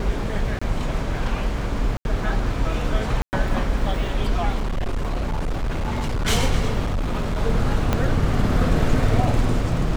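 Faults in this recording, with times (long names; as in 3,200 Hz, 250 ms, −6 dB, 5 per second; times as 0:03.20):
0:00.59–0:00.61: drop-out 25 ms
0:01.97–0:02.05: drop-out 81 ms
0:03.22–0:03.33: drop-out 109 ms
0:04.60–0:06.27: clipping −20 dBFS
0:06.85–0:07.39: clipping −19.5 dBFS
0:07.93: click −7 dBFS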